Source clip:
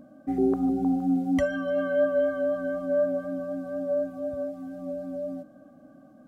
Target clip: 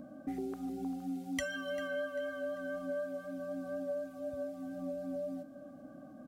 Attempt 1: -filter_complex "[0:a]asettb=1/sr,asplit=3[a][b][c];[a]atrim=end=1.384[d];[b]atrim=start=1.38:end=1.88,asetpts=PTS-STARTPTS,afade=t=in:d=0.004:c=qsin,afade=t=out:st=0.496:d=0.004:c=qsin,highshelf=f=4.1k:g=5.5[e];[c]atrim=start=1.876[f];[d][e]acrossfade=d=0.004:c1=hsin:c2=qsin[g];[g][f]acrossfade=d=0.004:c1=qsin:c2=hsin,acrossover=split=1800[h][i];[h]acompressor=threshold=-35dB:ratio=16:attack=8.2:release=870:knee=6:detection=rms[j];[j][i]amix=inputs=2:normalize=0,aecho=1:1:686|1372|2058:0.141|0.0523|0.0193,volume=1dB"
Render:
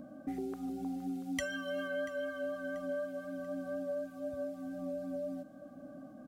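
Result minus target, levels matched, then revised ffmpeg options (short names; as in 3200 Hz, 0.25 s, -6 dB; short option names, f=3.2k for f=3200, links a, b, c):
echo 0.292 s late
-filter_complex "[0:a]asettb=1/sr,asplit=3[a][b][c];[a]atrim=end=1.384[d];[b]atrim=start=1.38:end=1.88,asetpts=PTS-STARTPTS,afade=t=in:d=0.004:c=qsin,afade=t=out:st=0.496:d=0.004:c=qsin,highshelf=f=4.1k:g=5.5[e];[c]atrim=start=1.876[f];[d][e]acrossfade=d=0.004:c1=hsin:c2=qsin[g];[g][f]acrossfade=d=0.004:c1=qsin:c2=hsin,acrossover=split=1800[h][i];[h]acompressor=threshold=-35dB:ratio=16:attack=8.2:release=870:knee=6:detection=rms[j];[j][i]amix=inputs=2:normalize=0,aecho=1:1:394|788|1182:0.141|0.0523|0.0193,volume=1dB"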